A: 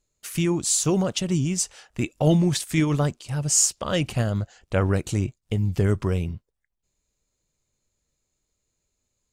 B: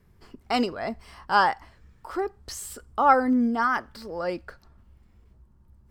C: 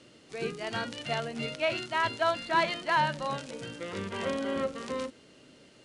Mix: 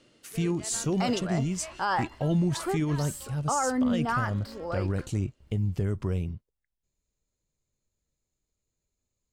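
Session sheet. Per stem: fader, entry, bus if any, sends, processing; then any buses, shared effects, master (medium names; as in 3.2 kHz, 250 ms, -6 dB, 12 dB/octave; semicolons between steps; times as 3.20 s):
-9.0 dB, 0.00 s, no send, bass shelf 490 Hz +5.5 dB
-2.5 dB, 0.50 s, no send, gate with hold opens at -47 dBFS
-5.0 dB, 0.00 s, no send, auto duck -13 dB, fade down 1.95 s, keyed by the first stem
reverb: none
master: peak limiter -18 dBFS, peak gain reduction 11 dB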